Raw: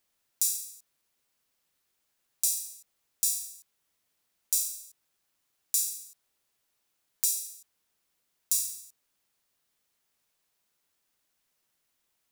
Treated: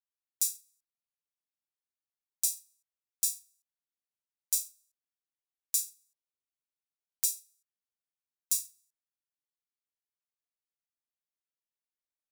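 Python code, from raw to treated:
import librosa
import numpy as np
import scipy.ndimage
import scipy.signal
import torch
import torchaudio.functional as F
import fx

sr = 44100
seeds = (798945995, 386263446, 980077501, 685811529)

y = fx.upward_expand(x, sr, threshold_db=-40.0, expansion=2.5)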